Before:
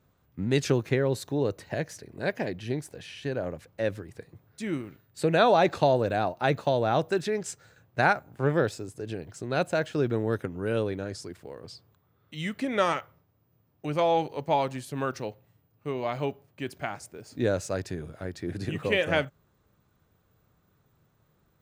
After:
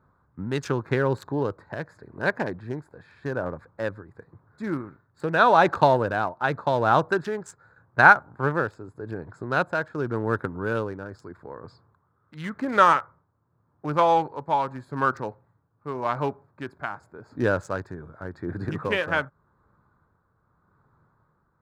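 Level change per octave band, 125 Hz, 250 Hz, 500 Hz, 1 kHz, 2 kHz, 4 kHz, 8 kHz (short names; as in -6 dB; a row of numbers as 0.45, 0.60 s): +0.5 dB, +0.5 dB, +0.5 dB, +7.0 dB, +7.5 dB, -2.0 dB, n/a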